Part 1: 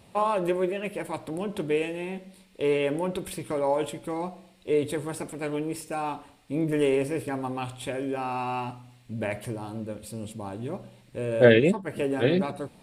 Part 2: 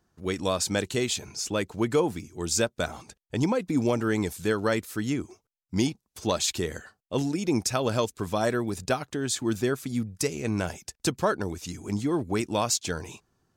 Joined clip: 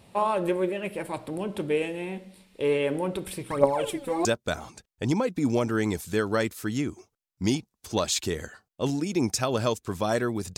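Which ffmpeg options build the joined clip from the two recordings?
-filter_complex "[0:a]asplit=3[a][b][c];[a]afade=t=out:st=3.49:d=0.02[d];[b]aphaser=in_gain=1:out_gain=1:delay=4.2:decay=0.76:speed=1.1:type=triangular,afade=t=in:st=3.49:d=0.02,afade=t=out:st=4.25:d=0.02[e];[c]afade=t=in:st=4.25:d=0.02[f];[d][e][f]amix=inputs=3:normalize=0,apad=whole_dur=10.57,atrim=end=10.57,atrim=end=4.252[g];[1:a]atrim=start=2.568:end=8.89[h];[g][h]acrossfade=d=0.004:c1=hsin:c2=hsin"

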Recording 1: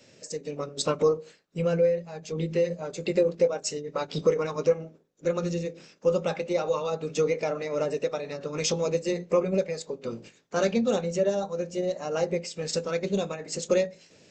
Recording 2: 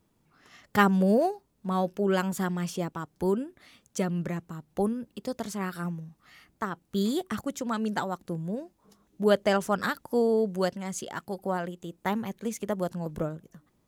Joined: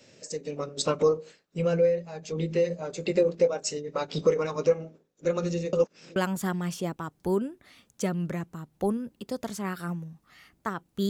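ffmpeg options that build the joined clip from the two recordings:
-filter_complex "[0:a]apad=whole_dur=11.09,atrim=end=11.09,asplit=2[a][b];[a]atrim=end=5.732[c];[b]atrim=start=5.728:end=6.162,asetpts=PTS-STARTPTS,areverse[d];[1:a]atrim=start=2.118:end=7.05[e];[c][d]acrossfade=d=0.004:c1=hsin:c2=hsin[f];[f][e]acrossfade=d=0.004:c1=hsin:c2=hsin"

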